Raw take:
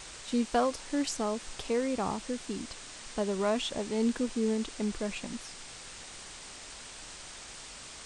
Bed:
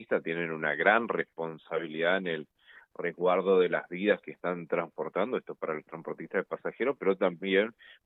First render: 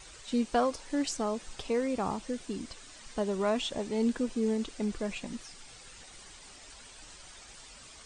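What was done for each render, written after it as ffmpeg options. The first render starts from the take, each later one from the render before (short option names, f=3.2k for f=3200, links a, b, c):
-af "afftdn=nr=9:nf=-47"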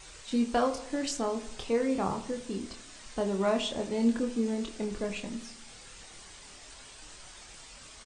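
-filter_complex "[0:a]asplit=2[a][b];[b]adelay=26,volume=-5.5dB[c];[a][c]amix=inputs=2:normalize=0,asplit=2[d][e];[e]adelay=79,lowpass=f=2k:p=1,volume=-13dB,asplit=2[f][g];[g]adelay=79,lowpass=f=2k:p=1,volume=0.54,asplit=2[h][i];[i]adelay=79,lowpass=f=2k:p=1,volume=0.54,asplit=2[j][k];[k]adelay=79,lowpass=f=2k:p=1,volume=0.54,asplit=2[l][m];[m]adelay=79,lowpass=f=2k:p=1,volume=0.54,asplit=2[n][o];[o]adelay=79,lowpass=f=2k:p=1,volume=0.54[p];[d][f][h][j][l][n][p]amix=inputs=7:normalize=0"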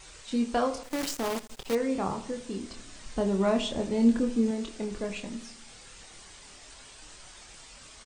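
-filter_complex "[0:a]asettb=1/sr,asplit=3[a][b][c];[a]atrim=end=0.834[d];[b]atrim=start=0.83:end=1.75,asetpts=PTS-STARTPTS,afade=t=in:d=0.004:c=qsin,afade=t=out:st=0.916:d=0.004:c=qsin,acrusher=bits=6:dc=4:mix=0:aa=0.000001[e];[c]atrim=start=1.746[f];[d][e]acrossfade=d=0.004:c1=hsin:c2=qsin[g];[g][f]acrossfade=d=0.004:c1=qsin:c2=hsin,asettb=1/sr,asplit=3[h][i][j];[h]atrim=end=2.754[k];[i]atrim=start=2.75:end=4.51,asetpts=PTS-STARTPTS,afade=t=in:d=0.004:c=qsin,afade=t=out:st=1.756:d=0.004:c=qsin,lowshelf=f=260:g=8[l];[j]atrim=start=4.506[m];[k][l]acrossfade=d=0.004:c1=hsin:c2=qsin[n];[n][m]acrossfade=d=0.004:c1=qsin:c2=hsin"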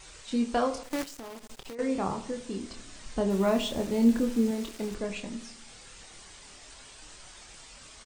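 -filter_complex "[0:a]asettb=1/sr,asplit=3[a][b][c];[a]atrim=end=1.034[d];[b]atrim=start=1.03:end=1.79,asetpts=PTS-STARTPTS,afade=t=in:d=0.004:c=qsin,afade=t=out:st=0.756:d=0.004:c=qsin,acompressor=threshold=-38dB:ratio=12:attack=3.2:release=140:knee=1:detection=peak[e];[c]atrim=start=1.786[f];[d][e]acrossfade=d=0.004:c1=hsin:c2=qsin[g];[g][f]acrossfade=d=0.004:c1=qsin:c2=hsin,asettb=1/sr,asplit=3[h][i][j];[h]atrim=end=3.304[k];[i]atrim=start=3.3:end=4.95,asetpts=PTS-STARTPTS,afade=t=in:d=0.004:c=qsin,afade=t=out:st=1.646:d=0.004:c=qsin,acrusher=bits=6:mix=0:aa=0.5[l];[j]atrim=start=4.946[m];[k][l]acrossfade=d=0.004:c1=hsin:c2=qsin[n];[n][m]acrossfade=d=0.004:c1=qsin:c2=hsin"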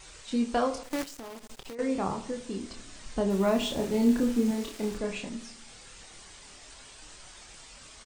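-filter_complex "[0:a]asettb=1/sr,asplit=3[a][b][c];[a]atrim=end=3.584[d];[b]atrim=start=3.58:end=5.29,asetpts=PTS-STARTPTS,afade=t=in:d=0.004:c=qsin,afade=t=out:st=1.706:d=0.004:c=qsin,asplit=2[e][f];[f]adelay=33,volume=-5dB[g];[e][g]amix=inputs=2:normalize=0,atrim=end_sample=75411[h];[c]atrim=start=5.286[i];[d][h]acrossfade=d=0.004:c1=hsin:c2=qsin[j];[j][i]acrossfade=d=0.004:c1=qsin:c2=hsin"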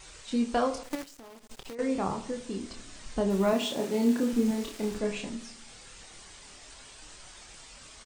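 -filter_complex "[0:a]asettb=1/sr,asplit=3[a][b][c];[a]atrim=end=3.534[d];[b]atrim=start=3.53:end=4.33,asetpts=PTS-STARTPTS,afade=t=in:d=0.004:c=qsin,afade=t=out:st=0.796:d=0.004:c=qsin,highpass=200[e];[c]atrim=start=4.326[f];[d][e]acrossfade=d=0.004:c1=hsin:c2=qsin[g];[g][f]acrossfade=d=0.004:c1=qsin:c2=hsin,asettb=1/sr,asplit=3[h][i][j];[h]atrim=end=4.944[k];[i]atrim=start=4.94:end=5.35,asetpts=PTS-STARTPTS,afade=t=in:d=0.004:c=qsin,afade=t=out:st=0.406:d=0.004:c=qsin,asplit=2[l][m];[m]adelay=14,volume=-6.5dB[n];[l][n]amix=inputs=2:normalize=0,atrim=end_sample=18081[o];[j]atrim=start=5.346[p];[k][o]acrossfade=d=0.004:c1=hsin:c2=qsin[q];[q][p]acrossfade=d=0.004:c1=qsin:c2=hsin,asplit=3[r][s][t];[r]atrim=end=0.952[u];[s]atrim=start=0.948:end=1.512,asetpts=PTS-STARTPTS,volume=-6.5dB[v];[t]atrim=start=1.508[w];[u][v]acrossfade=d=0.004:c1=hsin:c2=hsin[x];[x][w]acrossfade=d=0.004:c1=hsin:c2=hsin"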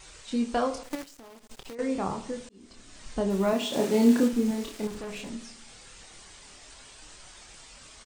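-filter_complex "[0:a]asplit=3[a][b][c];[a]afade=t=out:st=3.72:d=0.02[d];[b]acontrast=29,afade=t=in:st=3.72:d=0.02,afade=t=out:st=4.27:d=0.02[e];[c]afade=t=in:st=4.27:d=0.02[f];[d][e][f]amix=inputs=3:normalize=0,asettb=1/sr,asplit=3[g][h][i];[g]atrim=end=4.874[j];[h]atrim=start=4.87:end=5.3,asetpts=PTS-STARTPTS,afade=t=in:d=0.004:c=qsin,afade=t=out:st=0.426:d=0.004:c=qsin,asoftclip=type=hard:threshold=-35dB[k];[i]atrim=start=5.296[l];[j][k]acrossfade=d=0.004:c1=hsin:c2=qsin[m];[m][l]acrossfade=d=0.004:c1=qsin:c2=hsin,asplit=2[n][o];[n]atrim=end=2.49,asetpts=PTS-STARTPTS,afade=t=out:st=2.486:d=0.004:c=hsin[p];[o]atrim=start=2.49,asetpts=PTS-STARTPTS,afade=t=in:d=0.59[q];[p][q]concat=n=2:v=0:a=1"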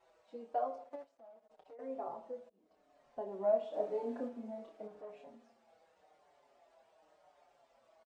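-filter_complex "[0:a]bandpass=f=650:t=q:w=4:csg=0,asplit=2[a][b];[b]adelay=5.5,afreqshift=-0.9[c];[a][c]amix=inputs=2:normalize=1"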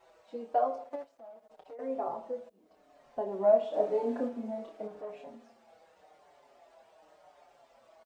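-af "volume=7.5dB"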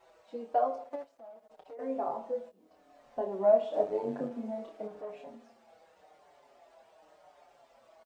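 -filter_complex "[0:a]asettb=1/sr,asplit=3[a][b][c];[a]atrim=end=1.754[d];[b]atrim=start=1.75:end=3.27,asetpts=PTS-STARTPTS,afade=t=in:d=0.004:c=qsin,afade=t=out:st=1.516:d=0.004:c=qsin,asplit=2[e][f];[f]adelay=22,volume=-5.5dB[g];[e][g]amix=inputs=2:normalize=0,atrim=end_sample=67032[h];[c]atrim=start=3.266[i];[d][h]acrossfade=d=0.004:c1=hsin:c2=qsin[j];[j][i]acrossfade=d=0.004:c1=qsin:c2=hsin,asettb=1/sr,asplit=3[k][l][m];[k]atrim=end=3.834[n];[l]atrim=start=3.83:end=4.31,asetpts=PTS-STARTPTS,afade=t=in:d=0.004:c=qsin,afade=t=out:st=0.476:d=0.004:c=qsin,tremolo=f=100:d=0.621[o];[m]atrim=start=4.306[p];[n][o]acrossfade=d=0.004:c1=hsin:c2=qsin[q];[q][p]acrossfade=d=0.004:c1=qsin:c2=hsin"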